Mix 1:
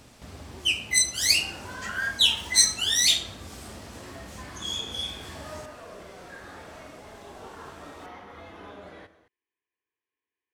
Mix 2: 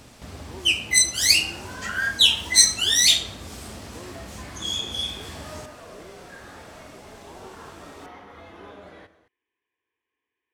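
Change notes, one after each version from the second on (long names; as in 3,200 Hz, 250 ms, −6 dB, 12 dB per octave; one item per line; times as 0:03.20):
speech +8.0 dB
first sound +4.0 dB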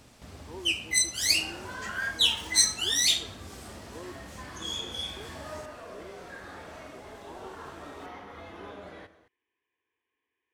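first sound −7.0 dB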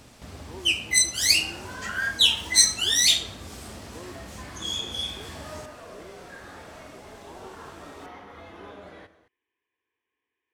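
first sound +4.5 dB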